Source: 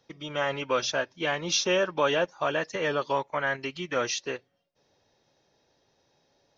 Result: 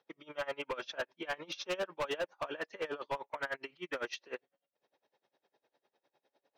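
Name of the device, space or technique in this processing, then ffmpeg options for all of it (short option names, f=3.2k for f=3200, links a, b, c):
helicopter radio: -af "highpass=330,lowpass=2.9k,aeval=exprs='val(0)*pow(10,-25*(0.5-0.5*cos(2*PI*9.9*n/s))/20)':c=same,asoftclip=type=hard:threshold=-29.5dB,volume=-1dB"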